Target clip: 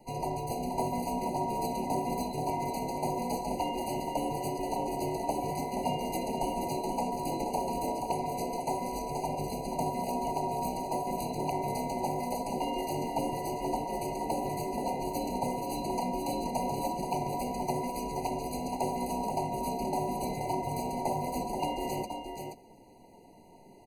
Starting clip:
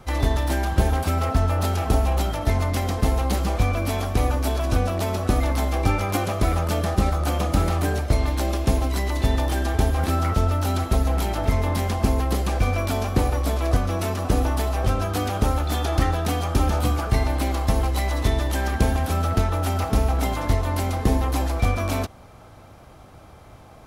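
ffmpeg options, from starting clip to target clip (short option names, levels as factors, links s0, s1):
-filter_complex "[0:a]afftfilt=real='real(if(between(b,1,1008),(2*floor((b-1)/48)+1)*48-b,b),0)':imag='imag(if(between(b,1,1008),(2*floor((b-1)/48)+1)*48-b,b),0)*if(between(b,1,1008),-1,1)':win_size=2048:overlap=0.75,asplit=2[s0][s1];[s1]asetrate=33038,aresample=44100,atempo=1.33484,volume=0.447[s2];[s0][s2]amix=inputs=2:normalize=0,asplit=2[s3][s4];[s4]aecho=0:1:478:0.501[s5];[s3][s5]amix=inputs=2:normalize=0,aeval=exprs='0.473*(abs(mod(val(0)/0.473+3,4)-2)-1)':c=same,equalizer=f=1500:w=0.66:g=-14,afftfilt=real='re*eq(mod(floor(b*sr/1024/990),2),0)':imag='im*eq(mod(floor(b*sr/1024/990),2),0)':win_size=1024:overlap=0.75,volume=0.562"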